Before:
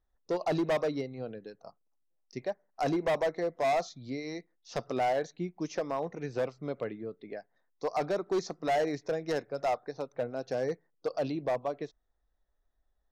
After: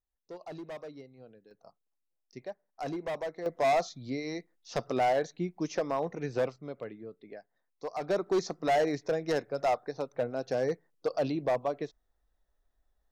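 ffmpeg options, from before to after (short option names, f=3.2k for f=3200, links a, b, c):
-af "asetnsamples=n=441:p=0,asendcmd='1.51 volume volume -6.5dB;3.46 volume volume 2dB;6.56 volume volume -5dB;8.09 volume volume 2dB',volume=-13.5dB"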